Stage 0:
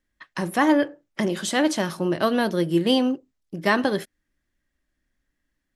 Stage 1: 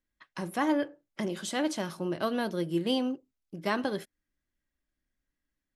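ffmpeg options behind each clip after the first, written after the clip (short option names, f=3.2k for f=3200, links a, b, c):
-af "bandreject=f=1.8k:w=16,volume=-8.5dB"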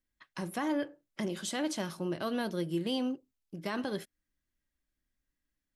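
-af "alimiter=limit=-21dB:level=0:latency=1,equalizer=f=710:w=0.34:g=-3"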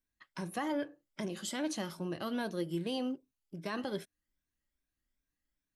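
-af "afftfilt=real='re*pow(10,7/40*sin(2*PI*(1.6*log(max(b,1)*sr/1024/100)/log(2)-(2.5)*(pts-256)/sr)))':imag='im*pow(10,7/40*sin(2*PI*(1.6*log(max(b,1)*sr/1024/100)/log(2)-(2.5)*(pts-256)/sr)))':win_size=1024:overlap=0.75,volume=-3dB"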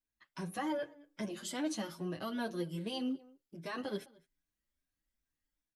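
-filter_complex "[0:a]dynaudnorm=f=100:g=5:m=4dB,asplit=2[a][b];[b]adelay=209.9,volume=-22dB,highshelf=f=4k:g=-4.72[c];[a][c]amix=inputs=2:normalize=0,asplit=2[d][e];[e]adelay=7.4,afreqshift=1.8[f];[d][f]amix=inputs=2:normalize=1,volume=-3dB"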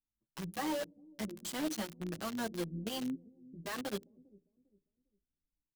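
-filter_complex "[0:a]tremolo=f=130:d=0.261,acrossover=split=400[a][b];[a]aecho=1:1:401|802|1203:0.112|0.0348|0.0108[c];[b]acrusher=bits=6:mix=0:aa=0.000001[d];[c][d]amix=inputs=2:normalize=0,volume=1dB"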